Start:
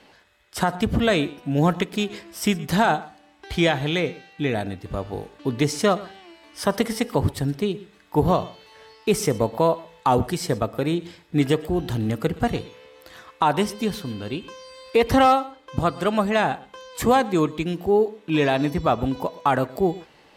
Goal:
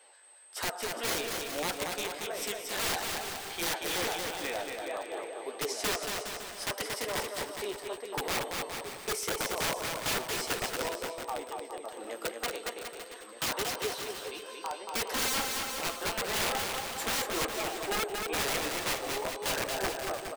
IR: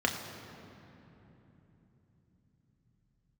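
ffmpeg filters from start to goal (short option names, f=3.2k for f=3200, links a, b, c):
-filter_complex "[0:a]highpass=f=440:w=0.5412,highpass=f=440:w=1.3066,asettb=1/sr,asplit=3[a][b][c];[a]atrim=end=10.834[d];[b]atrim=start=10.83:end=11.99,asetpts=PTS-STARTPTS,afade=t=in:d=0.004:c=qsin,afade=t=out:st=1.156:d=0.004:c=qsin,acompressor=threshold=-44dB:ratio=2.5[e];[c]atrim=start=11.986[f];[d][e]acrossfade=d=0.004:c1=hsin:c2=qsin[g];[g][f]acrossfade=d=0.004:c1=qsin:c2=hsin,asplit=2[h][i];[i]adelay=1224,volume=-9dB,highshelf=f=4k:g=-27.6[j];[h][j]amix=inputs=2:normalize=0,aeval=exprs='val(0)+0.00282*sin(2*PI*8300*n/s)':c=same,flanger=delay=9.1:depth=8.6:regen=21:speed=1.6:shape=sinusoidal,aeval=exprs='(mod(12.6*val(0)+1,2)-1)/12.6':c=same,asplit=2[k][l];[l]aecho=0:1:230|414|561.2|679|773.2:0.631|0.398|0.251|0.158|0.1[m];[k][m]amix=inputs=2:normalize=0,volume=-4dB"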